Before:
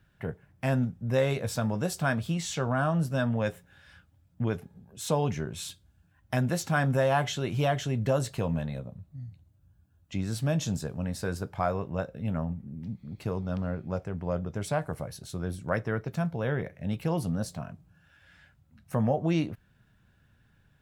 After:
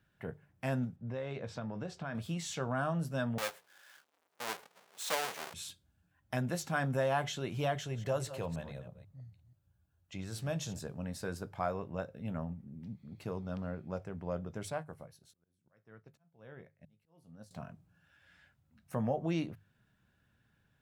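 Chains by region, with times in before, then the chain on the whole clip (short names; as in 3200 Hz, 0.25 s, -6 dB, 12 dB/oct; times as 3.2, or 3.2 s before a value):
0.96–2.15 HPF 54 Hz + compressor 10:1, threshold -27 dBFS + air absorption 160 m
3.38–5.54 half-waves squared off + HPF 660 Hz
7.75–10.79 reverse delay 0.162 s, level -12.5 dB + bell 240 Hz -8 dB 0.69 oct
14.7–17.51 resonator 53 Hz, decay 0.19 s, mix 50% + auto swell 0.756 s + upward expander, over -56 dBFS
whole clip: low shelf 78 Hz -8 dB; notches 50/100/150 Hz; gain -6 dB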